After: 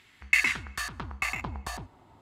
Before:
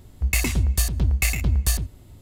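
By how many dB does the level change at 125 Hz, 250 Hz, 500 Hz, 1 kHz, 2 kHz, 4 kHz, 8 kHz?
−20.0, −12.5, −8.0, +3.0, +3.5, −6.0, −13.5 decibels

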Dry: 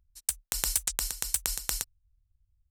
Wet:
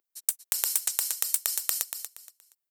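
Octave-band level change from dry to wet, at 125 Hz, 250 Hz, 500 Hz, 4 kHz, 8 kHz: below −20 dB, below −10 dB, −2.5 dB, 0.0 dB, +2.0 dB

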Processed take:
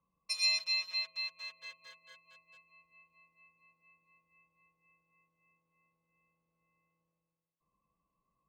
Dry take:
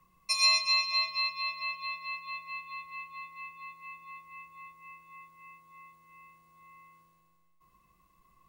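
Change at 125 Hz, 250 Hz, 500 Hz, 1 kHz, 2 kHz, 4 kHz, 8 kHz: −13.0 dB, can't be measured, −7.5 dB, −23.0 dB, −8.0 dB, −6.0 dB, −7.0 dB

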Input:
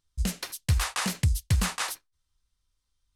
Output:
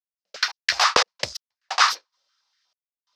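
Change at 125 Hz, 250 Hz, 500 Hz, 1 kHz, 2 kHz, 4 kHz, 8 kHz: −24.5, −11.5, +12.0, +13.5, +11.0, +11.5, +3.0 decibels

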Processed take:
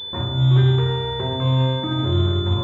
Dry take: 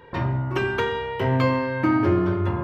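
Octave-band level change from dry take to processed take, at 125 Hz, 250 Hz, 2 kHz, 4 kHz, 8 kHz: +8.0 dB, −2.0 dB, −8.5 dB, +14.0 dB, can't be measured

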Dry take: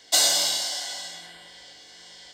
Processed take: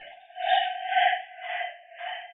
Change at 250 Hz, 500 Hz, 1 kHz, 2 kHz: below −20 dB, +5.5 dB, +13.0 dB, +6.5 dB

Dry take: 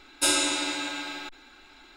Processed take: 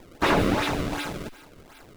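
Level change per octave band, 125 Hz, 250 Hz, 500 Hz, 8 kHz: +25.0, +7.5, +9.5, −14.0 decibels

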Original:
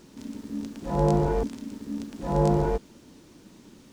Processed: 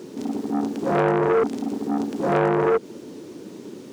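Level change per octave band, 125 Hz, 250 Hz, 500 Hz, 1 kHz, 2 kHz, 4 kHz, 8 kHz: −4.0 dB, +5.0 dB, +6.5 dB, +6.0 dB, +14.5 dB, +4.5 dB, can't be measured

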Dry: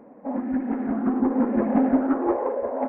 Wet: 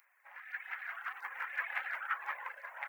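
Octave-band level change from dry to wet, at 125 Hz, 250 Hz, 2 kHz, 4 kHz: below −40 dB, below −40 dB, +6.0 dB, can't be measured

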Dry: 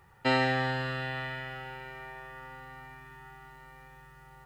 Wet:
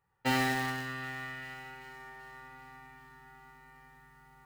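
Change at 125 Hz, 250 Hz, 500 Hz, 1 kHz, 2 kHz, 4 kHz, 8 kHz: −5.5, −1.0, −8.0, −3.0, −2.5, −3.0, +10.0 decibels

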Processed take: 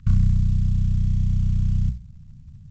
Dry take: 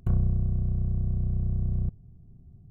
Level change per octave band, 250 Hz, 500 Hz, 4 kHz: +6.0 dB, below −15 dB, can't be measured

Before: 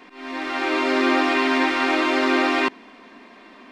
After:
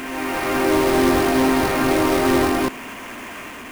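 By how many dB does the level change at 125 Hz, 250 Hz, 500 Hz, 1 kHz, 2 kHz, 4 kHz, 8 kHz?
can't be measured, +3.5 dB, +5.0 dB, +1.0 dB, −2.5 dB, −1.0 dB, +12.0 dB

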